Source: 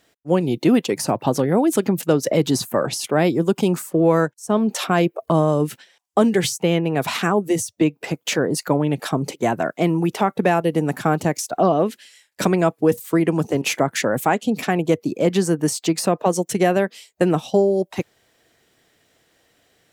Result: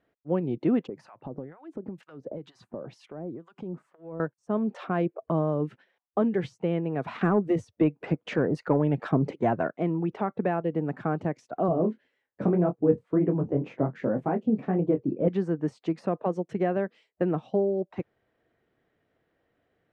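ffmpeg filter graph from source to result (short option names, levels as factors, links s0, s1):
-filter_complex "[0:a]asettb=1/sr,asplit=3[s0][s1][s2];[s0]atrim=end=0.874[s3];[s1]atrim=start=0.87:end=4.2,asetpts=PTS-STARTPTS,afade=t=in:d=0.004:c=qsin,afade=t=out:st=3.326:d=0.004:c=qsin,acompressor=threshold=0.0891:ratio=10:attack=3.2:release=140:knee=1:detection=peak,acrossover=split=960[s4][s5];[s4]aeval=exprs='val(0)*(1-1/2+1/2*cos(2*PI*2.1*n/s))':c=same[s6];[s5]aeval=exprs='val(0)*(1-1/2-1/2*cos(2*PI*2.1*n/s))':c=same[s7];[s6][s7]amix=inputs=2:normalize=0[s8];[s2]atrim=start=4.196[s9];[s3][s8]acrossfade=d=0.004:c1=hsin:c2=qsin[s10];[s10][s9]acrossfade=d=0.004:c1=qsin:c2=hsin,asettb=1/sr,asplit=3[s11][s12][s13];[s11]atrim=end=7.214[s14];[s12]atrim=start=7.21:end=9.68,asetpts=PTS-STARTPTS,afade=t=in:d=0.004:c=qsin,afade=t=out:st=2.466:d=0.004:c=qsin,acontrast=34,aphaser=in_gain=1:out_gain=1:delay=2.4:decay=0.24:speed=1:type=triangular[s15];[s13]atrim=start=9.676[s16];[s14][s15]acrossfade=d=0.004:c1=hsin:c2=qsin[s17];[s17][s16]acrossfade=d=0.004:c1=qsin:c2=hsin,asettb=1/sr,asplit=3[s18][s19][s20];[s18]atrim=end=11.684[s21];[s19]atrim=start=11.68:end=15.28,asetpts=PTS-STARTPTS,afade=t=in:d=0.004:c=qsin,afade=t=out:st=3.596:d=0.004:c=qsin,tiltshelf=f=1100:g=8,flanger=delay=6.4:depth=9.4:regen=-32:speed=1.9:shape=triangular,asplit=2[s22][s23];[s23]adelay=23,volume=0.376[s24];[s22][s24]amix=inputs=2:normalize=0,atrim=end_sample=158760[s25];[s20]atrim=start=15.276[s26];[s21][s25]acrossfade=d=0.004:c1=hsin:c2=qsin[s27];[s27][s26]acrossfade=d=0.004:c1=qsin:c2=hsin,lowpass=1500,equalizer=f=870:t=o:w=0.77:g=-3,volume=0.398"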